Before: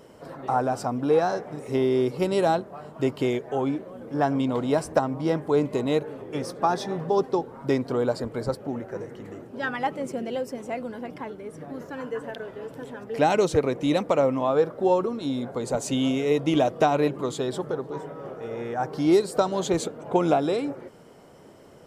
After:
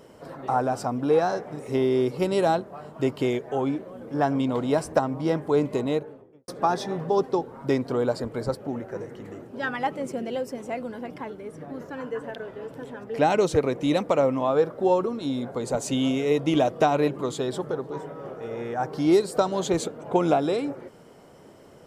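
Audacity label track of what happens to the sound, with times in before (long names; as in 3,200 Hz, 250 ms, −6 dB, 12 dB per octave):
5.730000	6.480000	fade out and dull
11.510000	13.450000	high-shelf EQ 4,500 Hz −4 dB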